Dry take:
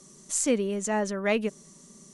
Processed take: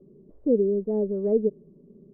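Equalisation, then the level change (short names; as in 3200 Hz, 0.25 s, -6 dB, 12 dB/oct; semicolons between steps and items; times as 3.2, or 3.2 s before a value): ladder low-pass 490 Hz, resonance 60%; low shelf 260 Hz +8 dB; +6.0 dB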